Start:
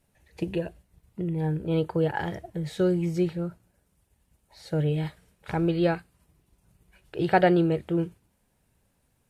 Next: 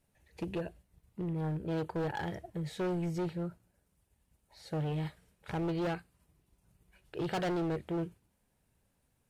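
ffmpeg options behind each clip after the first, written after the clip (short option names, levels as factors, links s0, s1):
-af "asoftclip=type=hard:threshold=0.0562,volume=0.531"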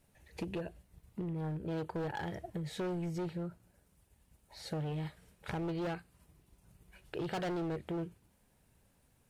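-af "acompressor=threshold=0.00631:ratio=3,volume=1.88"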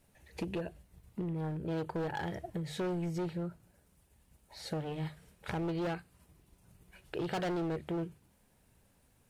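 -af "bandreject=f=50:t=h:w=6,bandreject=f=100:t=h:w=6,bandreject=f=150:t=h:w=6,volume=1.26"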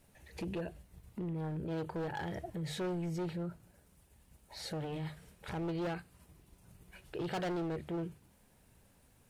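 -af "alimiter=level_in=3.55:limit=0.0631:level=0:latency=1:release=23,volume=0.282,volume=1.33"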